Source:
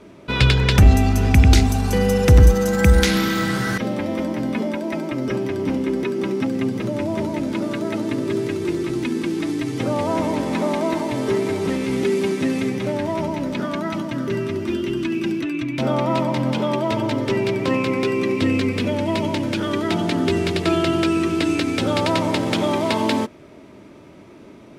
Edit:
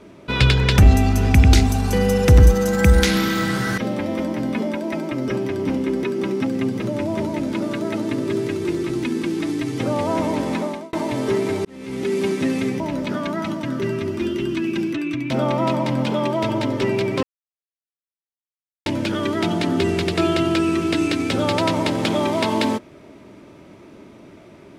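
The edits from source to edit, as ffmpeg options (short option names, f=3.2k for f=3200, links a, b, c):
-filter_complex "[0:a]asplit=6[a][b][c][d][e][f];[a]atrim=end=10.93,asetpts=PTS-STARTPTS,afade=t=out:st=10.51:d=0.42[g];[b]atrim=start=10.93:end=11.65,asetpts=PTS-STARTPTS,afade=t=in:d=0.004:c=hsin,afade=t=out:st=0.716:d=0.004:c=hsin[h];[c]atrim=start=11.65:end=12.802,asetpts=PTS-STARTPTS,afade=t=in:d=0.6[i];[d]atrim=start=13.278:end=17.71,asetpts=PTS-STARTPTS,afade=t=out:st=4.428:d=0.004:c=hsin[j];[e]atrim=start=17.71:end=19.34,asetpts=PTS-STARTPTS,volume=0[k];[f]atrim=start=19.34,asetpts=PTS-STARTPTS,afade=t=in:d=0.004:c=hsin[l];[g][h][i]concat=n=3:v=0:a=1[m];[j][k][l]concat=n=3:v=0:a=1[n];[m][n]acrossfade=d=0.004:c1=hsin:c2=hsin"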